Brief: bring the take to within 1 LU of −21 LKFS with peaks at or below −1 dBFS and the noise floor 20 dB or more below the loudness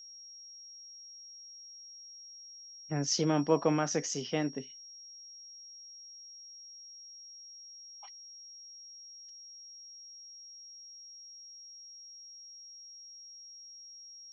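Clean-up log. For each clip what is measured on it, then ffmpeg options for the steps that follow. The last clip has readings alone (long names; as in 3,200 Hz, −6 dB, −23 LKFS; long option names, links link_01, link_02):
interfering tone 5,600 Hz; level of the tone −48 dBFS; integrated loudness −39.0 LKFS; sample peak −14.0 dBFS; target loudness −21.0 LKFS
→ -af "bandreject=frequency=5600:width=30"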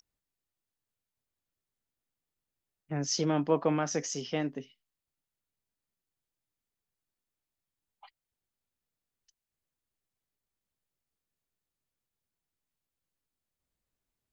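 interfering tone none found; integrated loudness −31.0 LKFS; sample peak −14.0 dBFS; target loudness −21.0 LKFS
→ -af "volume=10dB"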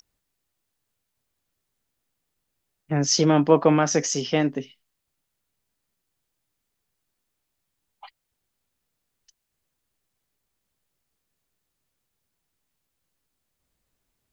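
integrated loudness −21.0 LKFS; sample peak −4.0 dBFS; background noise floor −80 dBFS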